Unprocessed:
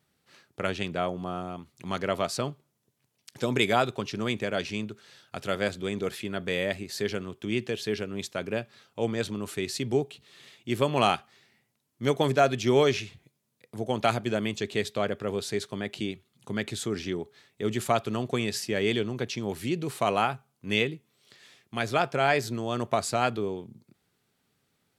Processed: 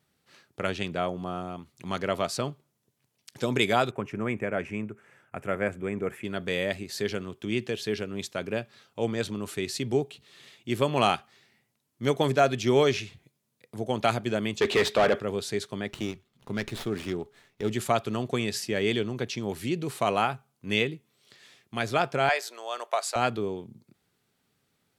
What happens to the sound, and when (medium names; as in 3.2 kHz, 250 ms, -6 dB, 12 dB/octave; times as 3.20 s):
3.91–6.24 s: FFT filter 2.3 kHz 0 dB, 4.1 kHz -27 dB, 7.7 kHz -8 dB
14.61–15.20 s: overdrive pedal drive 26 dB, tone 2.1 kHz, clips at -12.5 dBFS
15.87–17.72 s: sliding maximum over 5 samples
22.29–23.16 s: high-pass 560 Hz 24 dB/octave